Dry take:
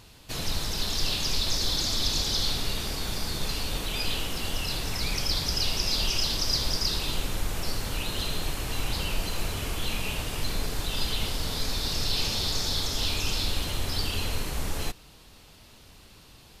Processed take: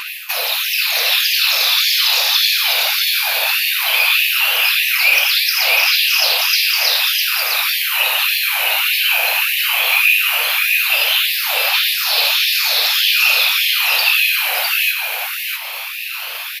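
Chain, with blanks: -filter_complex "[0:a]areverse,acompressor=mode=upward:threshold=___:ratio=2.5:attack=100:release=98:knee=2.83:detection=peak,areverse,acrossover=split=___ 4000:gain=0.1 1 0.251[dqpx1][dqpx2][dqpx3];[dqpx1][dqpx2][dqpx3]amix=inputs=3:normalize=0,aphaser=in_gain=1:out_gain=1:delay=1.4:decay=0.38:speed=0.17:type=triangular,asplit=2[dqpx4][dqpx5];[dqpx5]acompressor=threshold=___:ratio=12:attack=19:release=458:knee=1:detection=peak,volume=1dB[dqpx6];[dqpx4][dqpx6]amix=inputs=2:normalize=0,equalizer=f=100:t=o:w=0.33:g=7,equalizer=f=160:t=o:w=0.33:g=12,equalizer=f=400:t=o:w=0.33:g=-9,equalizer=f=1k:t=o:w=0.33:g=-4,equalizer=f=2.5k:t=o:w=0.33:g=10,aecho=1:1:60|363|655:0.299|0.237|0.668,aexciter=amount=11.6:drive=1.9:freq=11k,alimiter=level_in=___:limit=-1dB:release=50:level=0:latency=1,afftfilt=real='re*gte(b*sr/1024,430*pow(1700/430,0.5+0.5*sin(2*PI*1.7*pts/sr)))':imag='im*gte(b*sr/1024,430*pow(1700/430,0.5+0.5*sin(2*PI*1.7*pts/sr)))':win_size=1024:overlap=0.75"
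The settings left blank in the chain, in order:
-43dB, 340, -44dB, 13dB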